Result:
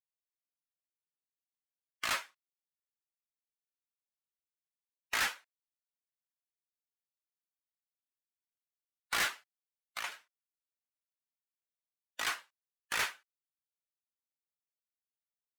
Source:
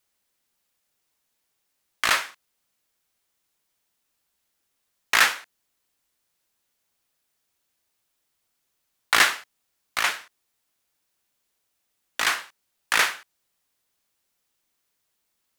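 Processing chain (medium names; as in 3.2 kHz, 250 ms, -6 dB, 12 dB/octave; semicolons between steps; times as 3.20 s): expander on every frequency bin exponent 1.5; 9.27–10.12 s: compression 6:1, threshold -29 dBFS, peak gain reduction 7.5 dB; overload inside the chain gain 21.5 dB; trim -6 dB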